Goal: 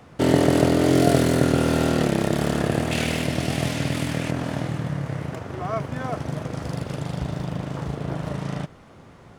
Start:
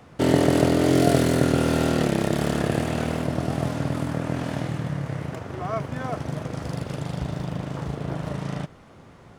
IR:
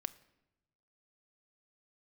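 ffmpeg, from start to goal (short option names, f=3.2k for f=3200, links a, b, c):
-filter_complex "[0:a]asettb=1/sr,asplit=3[a][b][c];[a]atrim=end=2.914[d];[b]atrim=start=2.91:end=4.31,asetpts=PTS-STARTPTS,afade=t=in:d=0.004:c=qsin,afade=t=out:st=1.396:d=0.004:c=qsin,highshelf=f=1.7k:t=q:w=1.5:g=8[e];[c]atrim=start=4.306[f];[d][e]acrossfade=d=0.004:c1=hsin:c2=qsin[g];[g][f]acrossfade=d=0.004:c1=qsin:c2=hsin,volume=1dB"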